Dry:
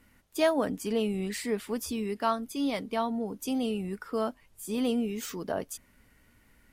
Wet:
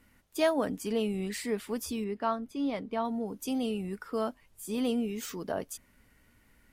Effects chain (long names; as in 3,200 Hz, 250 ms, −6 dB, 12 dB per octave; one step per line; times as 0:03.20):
0:02.04–0:03.05: low-pass filter 1,800 Hz 6 dB per octave
level −1.5 dB